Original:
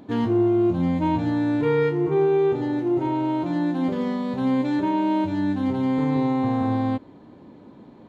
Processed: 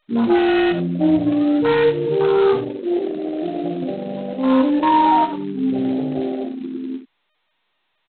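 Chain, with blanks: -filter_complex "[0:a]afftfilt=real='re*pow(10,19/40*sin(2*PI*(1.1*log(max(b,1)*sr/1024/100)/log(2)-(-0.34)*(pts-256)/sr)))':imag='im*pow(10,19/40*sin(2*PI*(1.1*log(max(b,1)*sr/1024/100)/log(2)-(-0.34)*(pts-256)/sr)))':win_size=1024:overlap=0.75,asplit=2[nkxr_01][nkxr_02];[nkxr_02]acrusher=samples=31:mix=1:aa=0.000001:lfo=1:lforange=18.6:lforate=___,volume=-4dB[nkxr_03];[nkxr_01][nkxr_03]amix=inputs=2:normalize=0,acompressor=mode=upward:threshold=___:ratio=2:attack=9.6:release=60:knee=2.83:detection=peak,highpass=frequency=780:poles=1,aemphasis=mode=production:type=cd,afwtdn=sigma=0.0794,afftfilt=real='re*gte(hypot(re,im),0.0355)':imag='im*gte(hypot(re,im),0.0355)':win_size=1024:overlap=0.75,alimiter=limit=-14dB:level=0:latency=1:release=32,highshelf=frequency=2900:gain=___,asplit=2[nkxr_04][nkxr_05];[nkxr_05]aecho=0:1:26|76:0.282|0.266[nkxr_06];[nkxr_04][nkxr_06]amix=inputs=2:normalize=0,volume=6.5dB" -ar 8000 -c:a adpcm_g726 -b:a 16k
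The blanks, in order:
0.37, -36dB, -8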